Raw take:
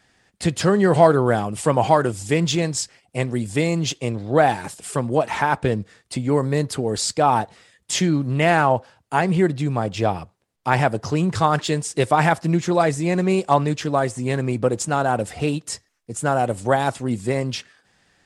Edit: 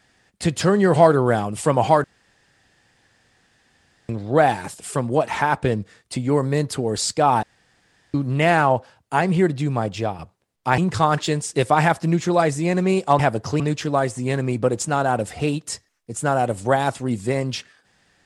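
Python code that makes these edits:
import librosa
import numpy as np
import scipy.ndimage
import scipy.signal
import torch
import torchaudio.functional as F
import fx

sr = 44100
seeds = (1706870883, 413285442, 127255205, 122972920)

y = fx.edit(x, sr, fx.room_tone_fill(start_s=2.04, length_s=2.05),
    fx.room_tone_fill(start_s=7.43, length_s=0.71),
    fx.fade_out_to(start_s=9.85, length_s=0.34, floor_db=-8.0),
    fx.move(start_s=10.78, length_s=0.41, to_s=13.6), tone=tone)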